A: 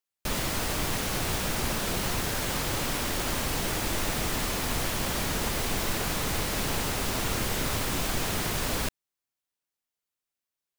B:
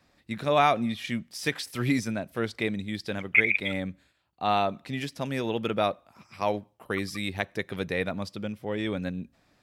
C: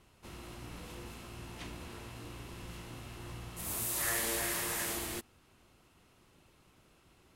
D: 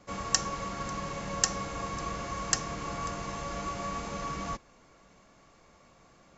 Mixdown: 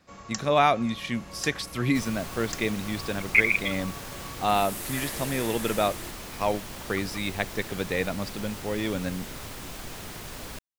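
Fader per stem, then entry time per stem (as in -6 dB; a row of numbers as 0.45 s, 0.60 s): -10.0 dB, +1.0 dB, -2.5 dB, -9.0 dB; 1.70 s, 0.00 s, 0.90 s, 0.00 s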